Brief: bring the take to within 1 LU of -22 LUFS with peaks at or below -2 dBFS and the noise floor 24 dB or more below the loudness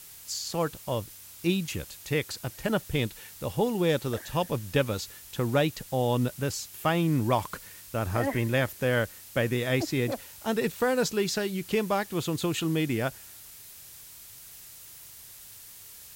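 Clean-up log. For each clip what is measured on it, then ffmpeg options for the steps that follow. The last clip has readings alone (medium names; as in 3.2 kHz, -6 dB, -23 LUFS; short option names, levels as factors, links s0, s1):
noise floor -48 dBFS; noise floor target -53 dBFS; loudness -29.0 LUFS; peak level -12.0 dBFS; loudness target -22.0 LUFS
-> -af "afftdn=nr=6:nf=-48"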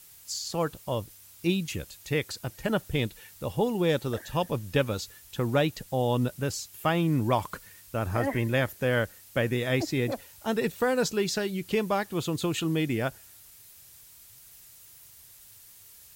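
noise floor -52 dBFS; noise floor target -53 dBFS
-> -af "afftdn=nr=6:nf=-52"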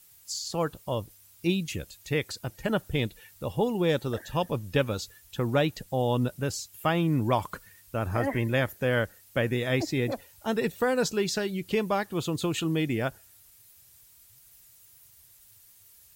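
noise floor -57 dBFS; loudness -29.0 LUFS; peak level -12.0 dBFS; loudness target -22.0 LUFS
-> -af "volume=2.24"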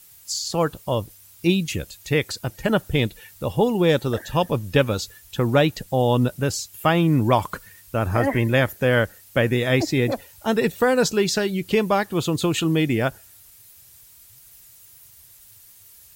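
loudness -22.0 LUFS; peak level -5.0 dBFS; noise floor -50 dBFS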